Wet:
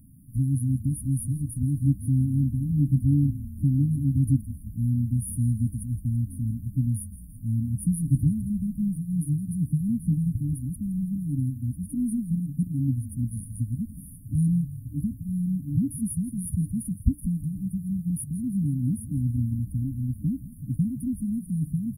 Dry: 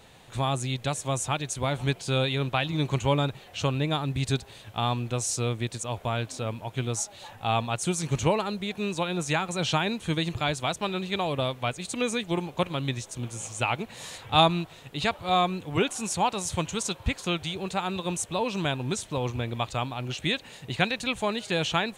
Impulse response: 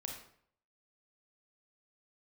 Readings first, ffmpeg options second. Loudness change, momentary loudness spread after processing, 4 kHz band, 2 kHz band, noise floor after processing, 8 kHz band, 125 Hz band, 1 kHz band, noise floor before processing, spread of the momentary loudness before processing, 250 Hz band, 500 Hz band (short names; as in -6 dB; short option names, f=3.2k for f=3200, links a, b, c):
+1.0 dB, 7 LU, under -40 dB, under -40 dB, -43 dBFS, -6.5 dB, +6.5 dB, under -40 dB, -50 dBFS, 6 LU, +5.5 dB, under -30 dB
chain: -filter_complex "[0:a]afftfilt=real='re*(1-between(b*sr/4096,300,9300))':imag='im*(1-between(b*sr/4096,300,9300))':win_size=4096:overlap=0.75,asplit=7[a][b][c][d][e][f][g];[b]adelay=166,afreqshift=-30,volume=-15dB[h];[c]adelay=332,afreqshift=-60,volume=-19.7dB[i];[d]adelay=498,afreqshift=-90,volume=-24.5dB[j];[e]adelay=664,afreqshift=-120,volume=-29.2dB[k];[f]adelay=830,afreqshift=-150,volume=-33.9dB[l];[g]adelay=996,afreqshift=-180,volume=-38.7dB[m];[a][h][i][j][k][l][m]amix=inputs=7:normalize=0,volume=6.5dB"